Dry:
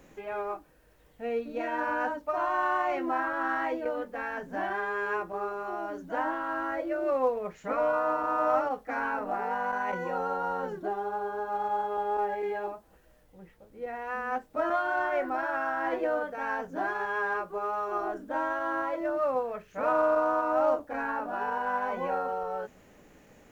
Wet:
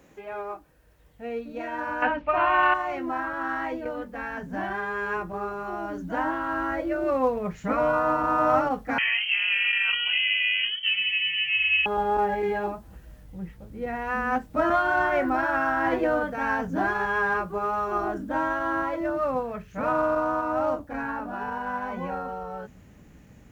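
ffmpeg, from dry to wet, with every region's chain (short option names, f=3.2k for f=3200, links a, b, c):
-filter_complex "[0:a]asettb=1/sr,asplit=3[a][b][c];[a]atrim=end=2.024[d];[b]atrim=start=2.02:end=2.74,asetpts=PTS-STARTPTS,afade=t=in:d=0.004:c=qsin,afade=t=out:st=0.716:d=0.004:c=qsin,lowpass=f=2.6k:t=q:w=4,acontrast=62[e];[c]atrim=start=2.736[f];[d][e]acrossfade=d=0.004:c1=hsin:c2=qsin[g];[g][f]acrossfade=d=0.004:c1=qsin:c2=hsin,asettb=1/sr,asplit=3[h][i][j];[h]atrim=end=8.984[k];[i]atrim=start=8.98:end=11.86,asetpts=PTS-STARTPTS,afade=t=in:d=0.004:c=qsin,afade=t=out:st=2.876:d=0.004:c=qsin,highpass=f=110:p=1,lowpass=f=2.9k:t=q:w=0.5098,lowpass=f=2.9k:t=q:w=0.6013,lowpass=f=2.9k:t=q:w=0.9,lowpass=f=2.9k:t=q:w=2.563,afreqshift=-3400[l];[j]atrim=start=11.856[m];[k][l]acrossfade=d=0.004:c1=hsin:c2=qsin[n];[n][m]acrossfade=d=0.004:c1=qsin:c2=hsin,dynaudnorm=f=670:g=17:m=7.5dB,asubboost=boost=5.5:cutoff=190,highpass=47"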